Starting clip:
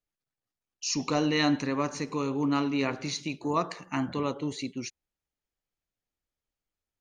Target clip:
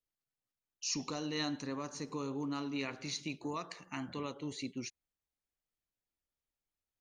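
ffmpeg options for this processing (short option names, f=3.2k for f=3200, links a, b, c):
-filter_complex "[0:a]asettb=1/sr,asplit=3[a][b][c];[a]atrim=end=1.084[d];[b]atrim=start=1.08:end=2.76,asetpts=PTS-STARTPTS,afade=t=in:d=0.004:c=qsin,afade=t=out:st=1.676:d=0.004:c=qsin,equalizer=f=2.3k:w=1.8:g=-8[e];[c]atrim=start=2.756[f];[d][e]acrossfade=d=0.004:c1=hsin:c2=qsin[g];[g][f]acrossfade=d=0.004:c1=qsin:c2=hsin,acrossover=split=1800[h][i];[h]alimiter=level_in=1dB:limit=-24dB:level=0:latency=1:release=421,volume=-1dB[j];[j][i]amix=inputs=2:normalize=0,volume=-5.5dB"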